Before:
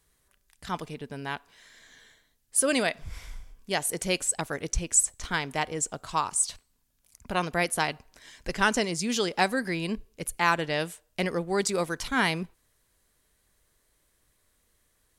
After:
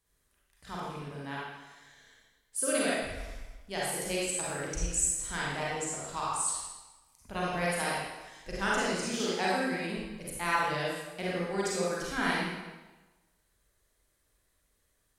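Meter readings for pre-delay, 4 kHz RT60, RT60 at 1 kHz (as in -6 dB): 34 ms, 1.0 s, 1.2 s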